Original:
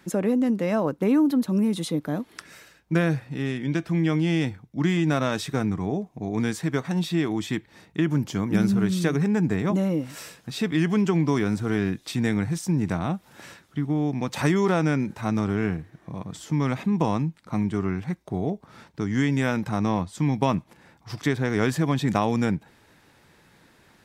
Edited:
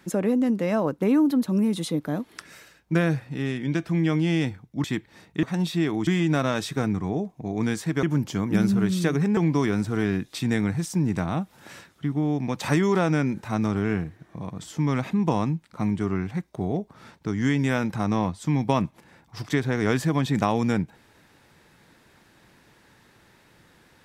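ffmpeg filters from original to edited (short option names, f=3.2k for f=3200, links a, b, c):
-filter_complex "[0:a]asplit=6[a][b][c][d][e][f];[a]atrim=end=4.842[g];[b]atrim=start=7.438:end=8.032[h];[c]atrim=start=6.798:end=7.442[i];[d]atrim=start=4.838:end=6.802[j];[e]atrim=start=8.028:end=9.372[k];[f]atrim=start=11.098[l];[g][h]acrossfade=d=0.004:c1=hsin:c2=hsin[m];[m][i]acrossfade=d=0.004:c1=hsin:c2=hsin[n];[n][j]acrossfade=d=0.004:c1=hsin:c2=hsin[o];[o][k]acrossfade=d=0.004:c1=hsin:c2=hsin[p];[p][l]acrossfade=d=0.004:c1=hsin:c2=hsin"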